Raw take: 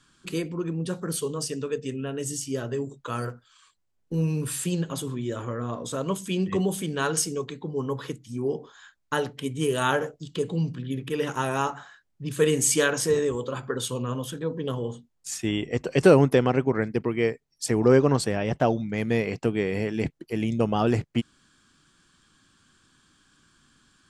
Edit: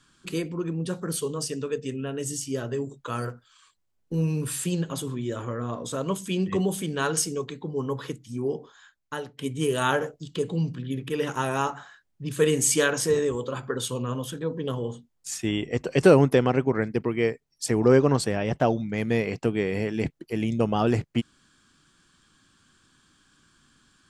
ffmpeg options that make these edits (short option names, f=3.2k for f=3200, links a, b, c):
-filter_complex "[0:a]asplit=2[a][b];[a]atrim=end=9.39,asetpts=PTS-STARTPTS,afade=t=out:st=8.39:d=1:silence=0.281838[c];[b]atrim=start=9.39,asetpts=PTS-STARTPTS,afade=t=in:d=0.004:c=hsin:silence=0.281838[d];[c][d]concat=n=2:v=0:a=1"